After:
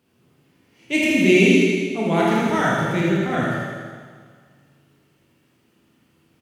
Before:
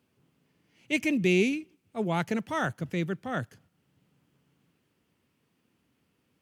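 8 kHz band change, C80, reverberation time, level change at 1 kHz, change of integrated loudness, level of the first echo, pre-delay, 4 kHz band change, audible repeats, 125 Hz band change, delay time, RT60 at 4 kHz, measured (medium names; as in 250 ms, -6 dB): +11.0 dB, -0.5 dB, 1.8 s, +11.0 dB, +10.5 dB, -4.0 dB, 21 ms, +11.5 dB, 1, +9.5 dB, 79 ms, 1.7 s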